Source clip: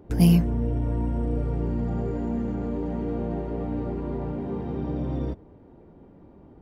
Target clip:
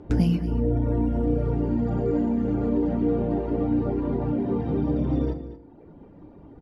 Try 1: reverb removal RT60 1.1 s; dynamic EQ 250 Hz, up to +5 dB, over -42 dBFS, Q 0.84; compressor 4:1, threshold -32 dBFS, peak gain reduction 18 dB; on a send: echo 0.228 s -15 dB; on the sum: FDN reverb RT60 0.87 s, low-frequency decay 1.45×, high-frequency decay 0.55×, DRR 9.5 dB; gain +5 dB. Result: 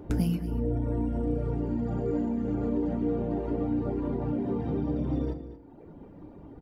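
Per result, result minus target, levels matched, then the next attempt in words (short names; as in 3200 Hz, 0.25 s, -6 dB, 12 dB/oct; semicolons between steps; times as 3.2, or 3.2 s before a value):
8000 Hz band +8.0 dB; compressor: peak gain reduction +5.5 dB
reverb removal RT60 1.1 s; dynamic EQ 250 Hz, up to +5 dB, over -42 dBFS, Q 0.84; LPF 6300 Hz 12 dB/oct; compressor 4:1, threshold -32 dBFS, peak gain reduction 18 dB; on a send: echo 0.228 s -15 dB; on the sum: FDN reverb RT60 0.87 s, low-frequency decay 1.45×, high-frequency decay 0.55×, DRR 9.5 dB; gain +5 dB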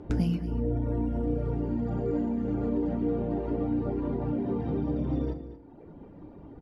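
compressor: peak gain reduction +5.5 dB
reverb removal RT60 1.1 s; dynamic EQ 250 Hz, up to +5 dB, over -42 dBFS, Q 0.84; LPF 6300 Hz 12 dB/oct; compressor 4:1, threshold -24.5 dBFS, peak gain reduction 12.5 dB; on a send: echo 0.228 s -15 dB; on the sum: FDN reverb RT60 0.87 s, low-frequency decay 1.45×, high-frequency decay 0.55×, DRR 9.5 dB; gain +5 dB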